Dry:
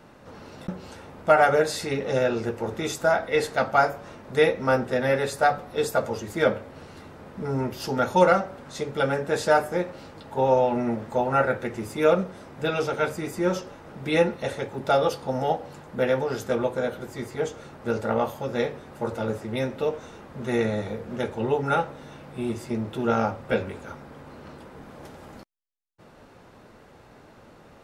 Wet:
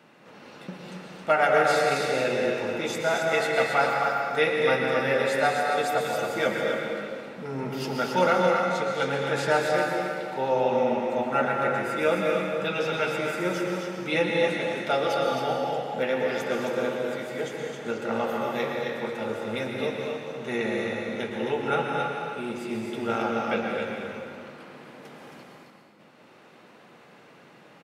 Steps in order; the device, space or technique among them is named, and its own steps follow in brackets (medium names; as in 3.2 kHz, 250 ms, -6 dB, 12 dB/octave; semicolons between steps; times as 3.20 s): stadium PA (high-pass 140 Hz 24 dB/octave; peaking EQ 2.6 kHz +7.5 dB 1.2 oct; loudspeakers at several distances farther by 77 m -11 dB, 92 m -5 dB; reverberation RT60 2.1 s, pre-delay 108 ms, DRR 1 dB); trim -5.5 dB